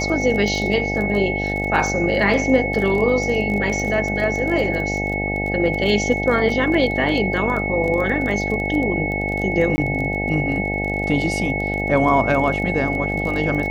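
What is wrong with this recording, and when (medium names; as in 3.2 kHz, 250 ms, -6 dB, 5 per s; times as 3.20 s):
buzz 50 Hz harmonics 17 -25 dBFS
crackle 20 per s -25 dBFS
whine 2.2 kHz -24 dBFS
6.49 s: dropout 2.8 ms
9.76–9.78 s: dropout 20 ms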